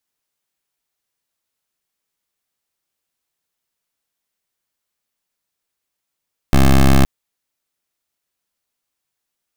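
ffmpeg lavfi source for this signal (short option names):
-f lavfi -i "aevalsrc='0.335*(2*lt(mod(67.2*t,1),0.14)-1)':d=0.52:s=44100"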